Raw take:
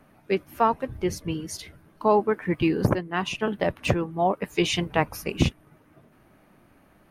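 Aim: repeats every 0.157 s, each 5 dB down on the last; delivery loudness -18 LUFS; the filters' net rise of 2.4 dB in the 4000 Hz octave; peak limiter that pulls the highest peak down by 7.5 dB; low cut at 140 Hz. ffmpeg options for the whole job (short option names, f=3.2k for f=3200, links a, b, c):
-af "highpass=140,equalizer=f=4k:t=o:g=3.5,alimiter=limit=-13.5dB:level=0:latency=1,aecho=1:1:157|314|471|628|785|942|1099:0.562|0.315|0.176|0.0988|0.0553|0.031|0.0173,volume=8.5dB"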